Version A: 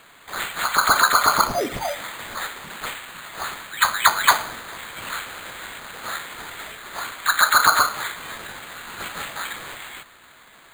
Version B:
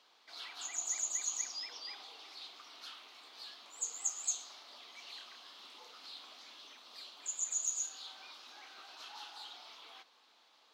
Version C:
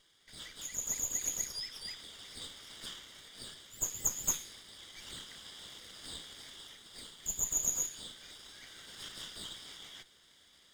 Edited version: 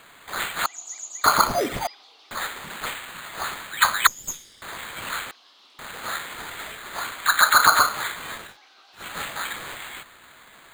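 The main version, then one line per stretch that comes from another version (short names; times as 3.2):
A
0.66–1.24 from B
1.87–2.31 from B
4.07–4.62 from C
5.31–5.79 from B
8.46–9.04 from B, crossfade 0.24 s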